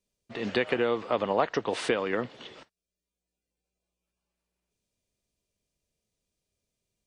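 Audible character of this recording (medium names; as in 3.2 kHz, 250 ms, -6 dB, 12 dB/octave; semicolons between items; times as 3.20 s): noise floor -89 dBFS; spectral tilt -3.0 dB/octave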